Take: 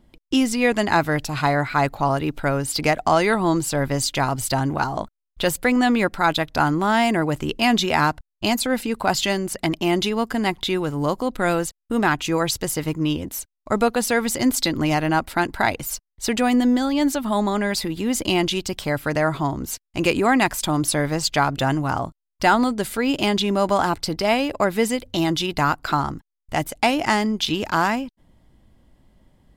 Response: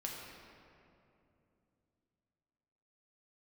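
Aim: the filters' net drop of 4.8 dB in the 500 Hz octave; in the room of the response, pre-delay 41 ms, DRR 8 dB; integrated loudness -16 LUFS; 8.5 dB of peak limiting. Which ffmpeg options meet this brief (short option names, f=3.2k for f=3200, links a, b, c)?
-filter_complex "[0:a]equalizer=f=500:t=o:g=-6.5,alimiter=limit=-14.5dB:level=0:latency=1,asplit=2[a][b];[1:a]atrim=start_sample=2205,adelay=41[c];[b][c]afir=irnorm=-1:irlink=0,volume=-8.5dB[d];[a][d]amix=inputs=2:normalize=0,volume=8.5dB"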